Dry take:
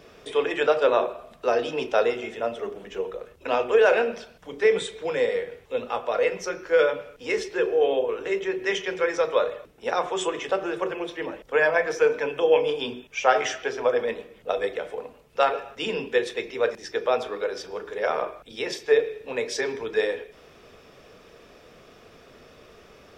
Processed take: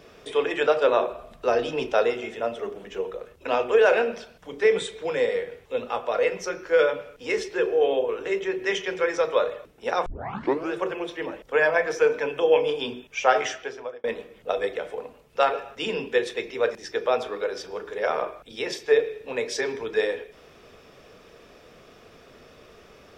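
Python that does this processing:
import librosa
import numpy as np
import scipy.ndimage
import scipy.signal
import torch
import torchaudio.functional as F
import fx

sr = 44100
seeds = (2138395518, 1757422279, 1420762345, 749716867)

y = fx.low_shelf(x, sr, hz=95.0, db=11.0, at=(1.1, 1.93))
y = fx.edit(y, sr, fx.tape_start(start_s=10.06, length_s=0.65),
    fx.fade_out_span(start_s=13.37, length_s=0.67), tone=tone)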